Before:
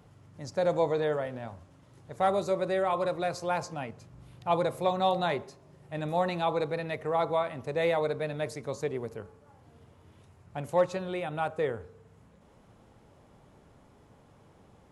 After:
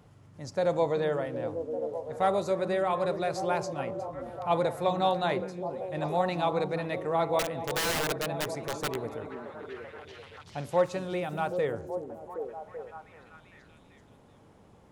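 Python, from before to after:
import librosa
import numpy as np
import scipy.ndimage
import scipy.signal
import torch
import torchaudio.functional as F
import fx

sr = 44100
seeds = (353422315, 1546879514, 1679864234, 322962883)

y = fx.overflow_wrap(x, sr, gain_db=25.0, at=(7.39, 8.96))
y = fx.echo_stepped(y, sr, ms=385, hz=240.0, octaves=0.7, feedback_pct=70, wet_db=-3)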